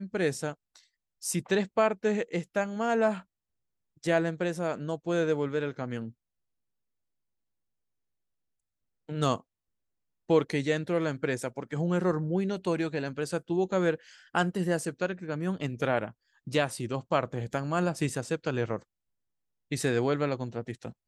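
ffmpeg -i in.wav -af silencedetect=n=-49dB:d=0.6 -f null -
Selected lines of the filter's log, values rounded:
silence_start: 3.22
silence_end: 4.03 | silence_duration: 0.81
silence_start: 6.11
silence_end: 9.09 | silence_duration: 2.97
silence_start: 9.40
silence_end: 10.29 | silence_duration: 0.89
silence_start: 18.82
silence_end: 19.71 | silence_duration: 0.89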